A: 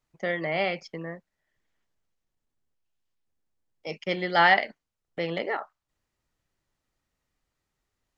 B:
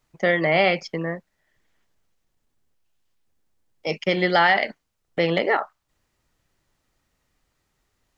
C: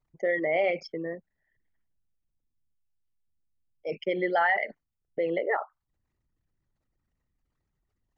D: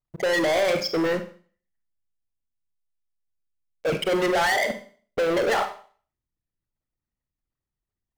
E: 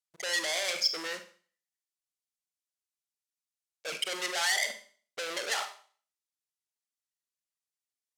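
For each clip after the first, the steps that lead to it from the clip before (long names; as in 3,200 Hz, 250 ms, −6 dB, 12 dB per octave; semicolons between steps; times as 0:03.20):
brickwall limiter −17 dBFS, peak gain reduction 10 dB; level +9 dB
spectral envelope exaggerated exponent 2; level −6.5 dB
downward compressor, threshold −27 dBFS, peak gain reduction 7 dB; leveller curve on the samples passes 5; four-comb reverb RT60 0.44 s, combs from 31 ms, DRR 8 dB
resonant band-pass 7,100 Hz, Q 0.77; level +4 dB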